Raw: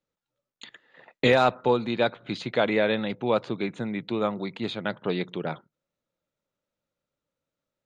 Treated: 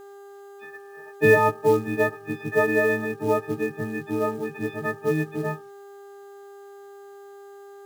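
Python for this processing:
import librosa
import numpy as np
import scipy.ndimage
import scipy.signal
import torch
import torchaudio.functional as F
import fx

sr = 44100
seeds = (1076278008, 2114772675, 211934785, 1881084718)

y = fx.freq_snap(x, sr, grid_st=6)
y = scipy.signal.sosfilt(scipy.signal.butter(4, 1700.0, 'lowpass', fs=sr, output='sos'), y)
y = fx.notch(y, sr, hz=1200.0, q=5.3)
y = y + 0.57 * np.pad(y, (int(7.3 * sr / 1000.0), 0))[:len(y)]
y = fx.dmg_buzz(y, sr, base_hz=400.0, harmonics=4, level_db=-46.0, tilt_db=-8, odd_only=False)
y = fx.quant_companded(y, sr, bits=6)
y = y * librosa.db_to_amplitude(1.5)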